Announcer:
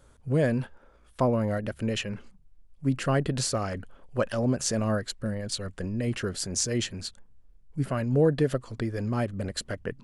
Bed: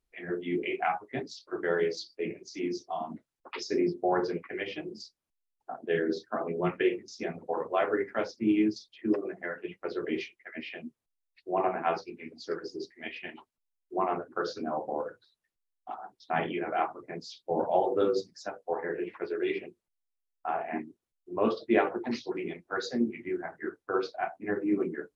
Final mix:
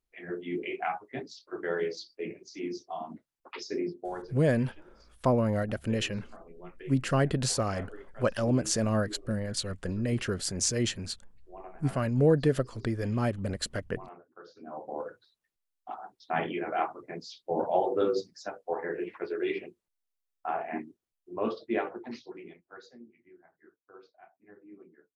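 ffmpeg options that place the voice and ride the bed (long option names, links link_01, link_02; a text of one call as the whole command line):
ffmpeg -i stem1.wav -i stem2.wav -filter_complex "[0:a]adelay=4050,volume=-0.5dB[link_01];[1:a]volume=15dB,afade=type=out:start_time=3.64:duration=0.71:silence=0.16788,afade=type=in:start_time=14.54:duration=0.65:silence=0.125893,afade=type=out:start_time=20.6:duration=2.41:silence=0.0707946[link_02];[link_01][link_02]amix=inputs=2:normalize=0" out.wav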